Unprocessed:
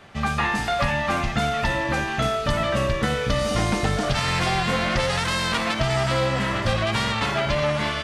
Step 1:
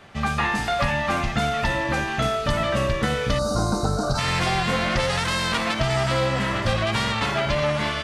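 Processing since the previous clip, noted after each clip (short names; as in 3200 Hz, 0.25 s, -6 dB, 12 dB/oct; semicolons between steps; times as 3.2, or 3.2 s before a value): spectral gain 3.39–4.19, 1600–3700 Hz -24 dB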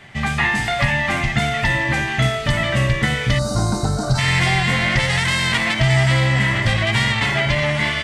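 thirty-one-band EQ 125 Hz +10 dB, 500 Hz -7 dB, 1250 Hz -6 dB, 2000 Hz +11 dB, 3150 Hz +4 dB, 8000 Hz +5 dB; gain +2 dB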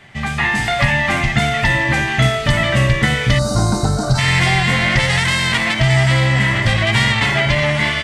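AGC; gain -1 dB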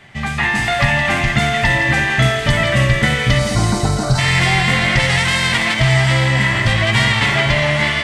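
thinning echo 0.166 s, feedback 67%, level -9 dB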